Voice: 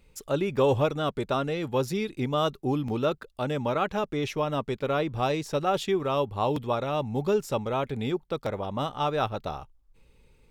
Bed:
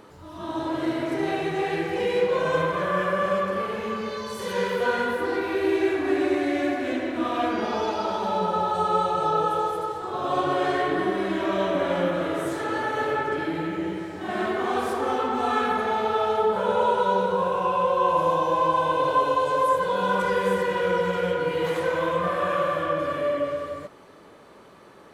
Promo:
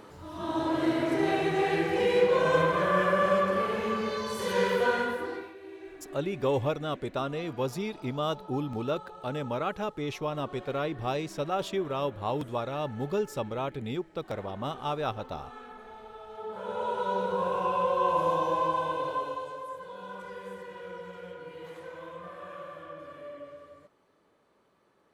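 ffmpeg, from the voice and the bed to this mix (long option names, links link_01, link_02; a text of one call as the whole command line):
ffmpeg -i stem1.wav -i stem2.wav -filter_complex "[0:a]adelay=5850,volume=-4.5dB[link_01];[1:a]volume=17.5dB,afade=type=out:start_time=4.74:duration=0.8:silence=0.0794328,afade=type=in:start_time=16.29:duration=1.24:silence=0.125893,afade=type=out:start_time=18.45:duration=1.16:silence=0.199526[link_02];[link_01][link_02]amix=inputs=2:normalize=0" out.wav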